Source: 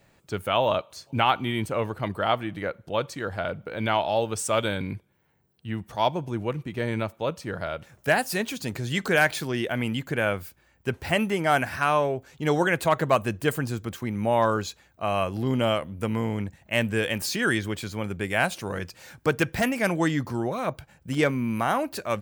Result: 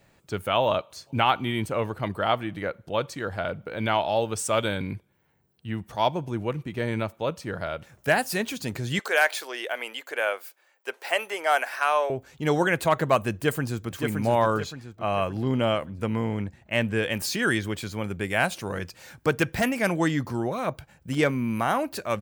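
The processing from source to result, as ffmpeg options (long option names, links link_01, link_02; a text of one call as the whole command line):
ffmpeg -i in.wav -filter_complex "[0:a]asettb=1/sr,asplit=3[link_01][link_02][link_03];[link_01]atrim=end=8.994[link_04];[link_02]atrim=start=8.99:end=12.1,asetpts=PTS-STARTPTS,afade=type=in:duration=0.004:curve=qsin,afade=type=out:start_time=3.106:duration=0.004:curve=qsin,highpass=frequency=470:width=0.5412,highpass=frequency=470:width=1.3066[link_05];[link_03]atrim=start=12.096[link_06];[link_04][link_05]acrossfade=duration=0.004:curve1=hsin:curve2=qsin[link_07];[link_07][link_06]acrossfade=duration=0.004:curve1=qsin:curve2=hsin,asplit=2[link_08][link_09];[link_09]afade=type=in:start_time=13.32:duration=0.01,afade=type=out:start_time=13.92:duration=0.01,aecho=0:1:570|1140|1710|2280|2850|3420:0.562341|0.253054|0.113874|0.0512434|0.0230595|0.0103768[link_10];[link_08][link_10]amix=inputs=2:normalize=0,asettb=1/sr,asplit=3[link_11][link_12][link_13];[link_11]atrim=end=14.604[link_14];[link_12]atrim=start=14.6:end=17.12,asetpts=PTS-STARTPTS,afade=type=in:duration=0.004:curve=qsin,afade=type=out:start_time=2.516:duration=0.004:curve=qsin,highshelf=frequency=7200:gain=-10.5[link_15];[link_13]atrim=start=17.116[link_16];[link_14][link_15]acrossfade=duration=0.004:curve1=hsin:curve2=qsin[link_17];[link_17][link_16]acrossfade=duration=0.004:curve1=qsin:curve2=hsin" out.wav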